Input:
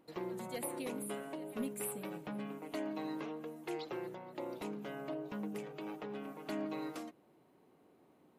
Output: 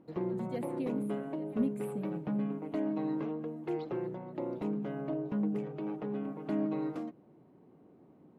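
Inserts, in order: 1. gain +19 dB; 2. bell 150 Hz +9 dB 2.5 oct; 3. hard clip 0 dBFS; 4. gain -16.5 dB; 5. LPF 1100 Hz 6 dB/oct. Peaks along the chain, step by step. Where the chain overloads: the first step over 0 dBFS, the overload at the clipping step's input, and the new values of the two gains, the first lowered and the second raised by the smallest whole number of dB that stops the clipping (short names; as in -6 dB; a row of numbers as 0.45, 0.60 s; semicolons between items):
-8.0, -2.5, -2.5, -19.0, -19.5 dBFS; no overload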